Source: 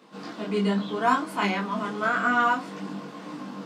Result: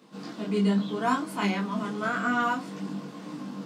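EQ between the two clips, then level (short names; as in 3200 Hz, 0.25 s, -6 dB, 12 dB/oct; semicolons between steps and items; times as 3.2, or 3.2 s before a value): low shelf 330 Hz +11 dB; high shelf 3600 Hz +8.5 dB; -6.5 dB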